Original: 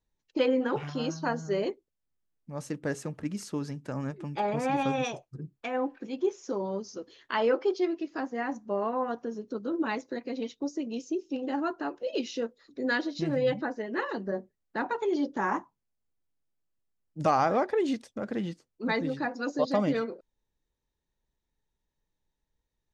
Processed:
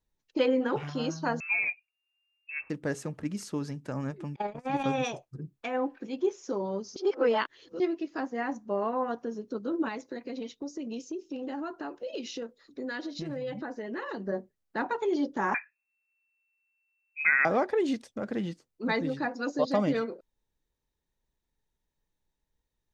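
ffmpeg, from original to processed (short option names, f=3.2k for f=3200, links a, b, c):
-filter_complex "[0:a]asettb=1/sr,asplit=3[a][b][c];[a]atrim=end=1.404[d];[b]atrim=start=1.4:end=2.7,asetpts=PTS-STARTPTS,afade=t=in:d=0.004:c=qsin,afade=t=out:st=1.296:d=0.004:c=qsin,lowpass=f=2.4k:t=q:w=0.5098,lowpass=f=2.4k:t=q:w=0.6013,lowpass=f=2.4k:t=q:w=0.9,lowpass=f=2.4k:t=q:w=2.563,afreqshift=-2800[e];[c]atrim=start=2.696[f];[d][e]acrossfade=d=0.004:c1=hsin:c2=qsin[g];[g][f]acrossfade=d=0.004:c1=qsin:c2=hsin,asettb=1/sr,asplit=3[h][i][j];[h]atrim=end=4.364[k];[i]atrim=start=4.36:end=4.84,asetpts=PTS-STARTPTS,afade=t=in:d=0.004:c=qsin,afade=t=out:st=0.476:d=0.004:c=qsin,agate=range=-32dB:threshold=-28dB:ratio=16:release=100:detection=peak[l];[j]atrim=start=4.836[m];[k][l]acrossfade=d=0.004:c1=hsin:c2=qsin[n];[n][m]acrossfade=d=0.004:c1=qsin:c2=hsin,asettb=1/sr,asplit=3[o][p][q];[o]atrim=end=9.884[r];[p]atrim=start=9.88:end=14.21,asetpts=PTS-STARTPTS,afade=t=in:d=0.004:c=qsin,afade=t=out:st=4.326:d=0.004:c=qsin,acompressor=threshold=-32dB:ratio=6:attack=3.2:release=140:knee=1:detection=peak[s];[q]atrim=start=14.206[t];[r][s]acrossfade=d=0.004:c1=hsin:c2=qsin[u];[u][t]acrossfade=d=0.004:c1=qsin:c2=hsin,asettb=1/sr,asplit=3[v][w][x];[v]atrim=end=15.544[y];[w]atrim=start=15.54:end=17.45,asetpts=PTS-STARTPTS,afade=t=in:d=0.004:c=qsin,afade=t=out:st=1.906:d=0.004:c=qsin,lowpass=f=2.3k:t=q:w=0.5098,lowpass=f=2.3k:t=q:w=0.6013,lowpass=f=2.3k:t=q:w=0.9,lowpass=f=2.3k:t=q:w=2.563,afreqshift=-2700[z];[x]atrim=start=17.446[aa];[y][z]acrossfade=d=0.004:c1=hsin:c2=qsin[ab];[ab][aa]acrossfade=d=0.004:c1=qsin:c2=hsin,asplit=3[ac][ad][ae];[ac]atrim=end=6.962[af];[ad]atrim=start=6.958:end=7.802,asetpts=PTS-STARTPTS,areverse[ag];[ae]atrim=start=7.798[ah];[af][ag]acrossfade=d=0.004:c1=hsin:c2=hsin[ai];[ai][ah]acrossfade=d=0.004:c1=hsin:c2=hsin"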